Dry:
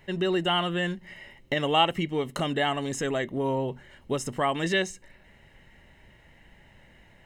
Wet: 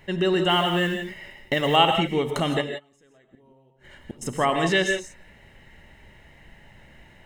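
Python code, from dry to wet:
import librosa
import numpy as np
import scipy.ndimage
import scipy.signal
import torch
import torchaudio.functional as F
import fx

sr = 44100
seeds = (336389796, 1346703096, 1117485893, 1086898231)

y = fx.mod_noise(x, sr, seeds[0], snr_db=29, at=(0.49, 1.76))
y = fx.gate_flip(y, sr, shuts_db=-25.0, range_db=-34, at=(2.6, 4.21), fade=0.02)
y = fx.rev_gated(y, sr, seeds[1], gate_ms=190, shape='rising', drr_db=5.5)
y = F.gain(torch.from_numpy(y), 3.5).numpy()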